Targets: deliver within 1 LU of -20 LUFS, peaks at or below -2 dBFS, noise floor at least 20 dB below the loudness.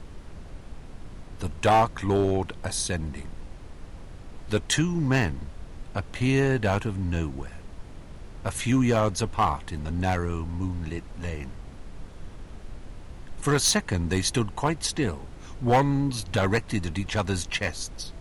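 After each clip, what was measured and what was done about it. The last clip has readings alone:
clipped 0.4%; flat tops at -14.5 dBFS; noise floor -43 dBFS; noise floor target -47 dBFS; loudness -26.5 LUFS; peak -14.5 dBFS; loudness target -20.0 LUFS
-> clip repair -14.5 dBFS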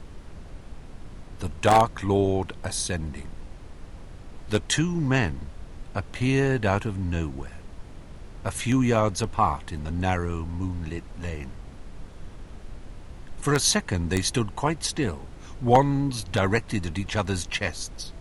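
clipped 0.0%; noise floor -43 dBFS; noise floor target -46 dBFS
-> noise print and reduce 6 dB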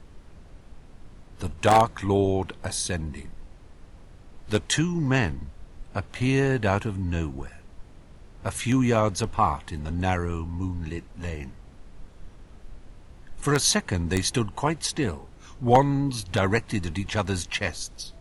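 noise floor -49 dBFS; loudness -25.5 LUFS; peak -5.5 dBFS; loudness target -20.0 LUFS
-> gain +5.5 dB; limiter -2 dBFS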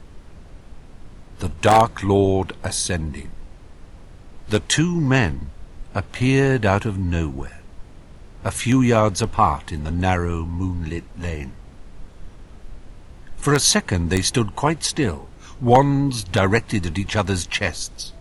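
loudness -20.5 LUFS; peak -2.0 dBFS; noise floor -44 dBFS

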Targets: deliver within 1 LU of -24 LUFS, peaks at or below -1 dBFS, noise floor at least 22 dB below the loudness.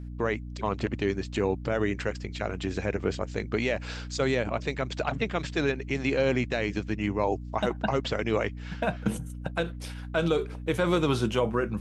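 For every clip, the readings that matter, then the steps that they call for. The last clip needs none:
hum 60 Hz; harmonics up to 300 Hz; hum level -36 dBFS; loudness -29.0 LUFS; peak -13.0 dBFS; loudness target -24.0 LUFS
-> notches 60/120/180/240/300 Hz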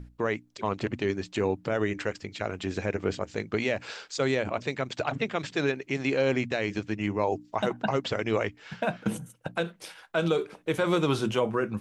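hum none; loudness -29.5 LUFS; peak -13.5 dBFS; loudness target -24.0 LUFS
-> gain +5.5 dB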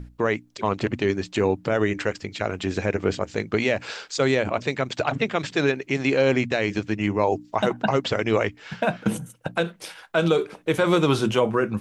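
loudness -24.0 LUFS; peak -8.0 dBFS; noise floor -53 dBFS

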